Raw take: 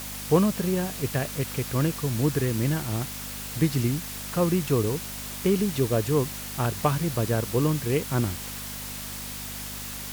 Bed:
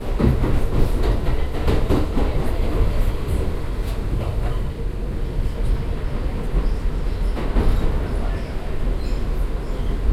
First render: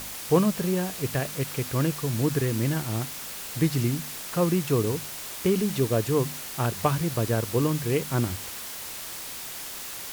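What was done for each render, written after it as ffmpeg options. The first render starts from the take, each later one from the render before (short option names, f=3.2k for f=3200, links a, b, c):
-af "bandreject=f=50:t=h:w=4,bandreject=f=100:t=h:w=4,bandreject=f=150:t=h:w=4,bandreject=f=200:t=h:w=4,bandreject=f=250:t=h:w=4"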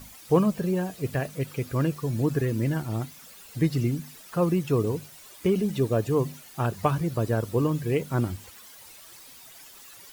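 -af "afftdn=nr=14:nf=-37"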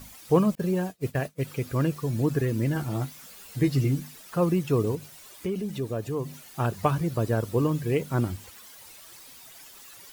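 -filter_complex "[0:a]asettb=1/sr,asplit=3[a][b][c];[a]atrim=end=0.554[d];[b]atrim=start=0.55:end=1.43,asetpts=PTS-STARTPTS,afade=t=in:d=0.004:c=qsin,afade=t=out:st=0.876:d=0.004:c=qsin,agate=range=-33dB:threshold=-31dB:ratio=3:release=100:detection=peak[e];[c]atrim=start=1.426[f];[d][e]acrossfade=d=0.004:c1=hsin:c2=qsin[g];[g][f]acrossfade=d=0.004:c1=qsin:c2=hsin,asettb=1/sr,asplit=3[h][i][j];[h]atrim=end=2.744[k];[i]atrim=start=2.74:end=4.08,asetpts=PTS-STARTPTS,afade=t=in:d=0.004:c=qsin,afade=t=out:st=1.336:d=0.004:c=qsin,asplit=2[l][m];[m]adelay=15,volume=-5dB[n];[l][n]amix=inputs=2:normalize=0,atrim=end_sample=59094[o];[j]atrim=start=4.076[p];[k][o]acrossfade=d=0.004:c1=hsin:c2=qsin[q];[q][p]acrossfade=d=0.004:c1=qsin:c2=hsin,asettb=1/sr,asplit=3[r][s][t];[r]atrim=end=4.954[u];[s]atrim=start=4.95:end=6.47,asetpts=PTS-STARTPTS,afade=t=in:d=0.004:c=qsin,afade=t=out:st=1.516:d=0.004:c=qsin,acompressor=threshold=-37dB:ratio=1.5:attack=3.2:release=140:knee=1:detection=peak[v];[t]atrim=start=6.466[w];[u][v]acrossfade=d=0.004:c1=hsin:c2=qsin[x];[x][w]acrossfade=d=0.004:c1=qsin:c2=hsin"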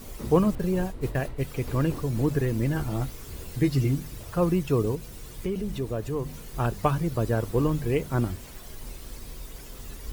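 -filter_complex "[1:a]volume=-18.5dB[a];[0:a][a]amix=inputs=2:normalize=0"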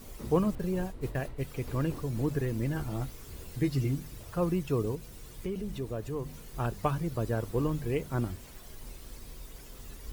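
-af "volume=-5.5dB"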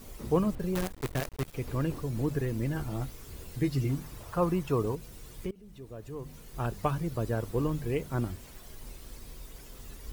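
-filter_complex "[0:a]asettb=1/sr,asplit=3[a][b][c];[a]atrim=end=0.754[d];[b]atrim=start=0.75:end=1.55,asetpts=PTS-STARTPTS,afade=t=in:d=0.004:c=qsin,afade=t=out:st=0.796:d=0.004:c=qsin,acrusher=bits=6:dc=4:mix=0:aa=0.000001[e];[c]atrim=start=1.546[f];[d][e]acrossfade=d=0.004:c1=hsin:c2=qsin[g];[g][f]acrossfade=d=0.004:c1=qsin:c2=hsin,asettb=1/sr,asplit=3[h][i][j];[h]atrim=end=3.894[k];[i]atrim=start=3.89:end=4.95,asetpts=PTS-STARTPTS,afade=t=in:d=0.004:c=qsin,afade=t=out:st=1.056:d=0.004:c=qsin,equalizer=f=1k:t=o:w=1.3:g=7[l];[j]atrim=start=4.946[m];[k][l]acrossfade=d=0.004:c1=hsin:c2=qsin[n];[n][m]acrossfade=d=0.004:c1=qsin:c2=hsin,asplit=2[o][p];[o]atrim=end=5.51,asetpts=PTS-STARTPTS,afade=t=out:st=5.506:d=0.004:c=hsin:silence=0.0749894[q];[p]atrim=start=5.51,asetpts=PTS-STARTPTS,afade=t=in:d=1.21:silence=0.0749894[r];[q][r]concat=n=2:v=0:a=1"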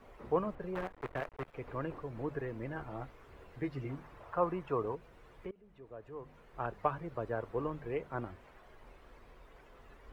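-filter_complex "[0:a]lowpass=f=3.7k:p=1,acrossover=split=440 2400:gain=0.224 1 0.1[a][b][c];[a][b][c]amix=inputs=3:normalize=0"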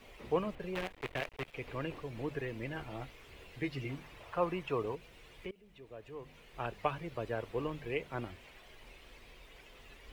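-af "highshelf=f=1.9k:t=q:w=1.5:g=10"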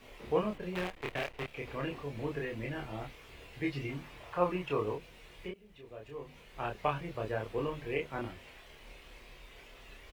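-filter_complex "[0:a]asplit=2[a][b];[b]adelay=28,volume=-2dB[c];[a][c]amix=inputs=2:normalize=0"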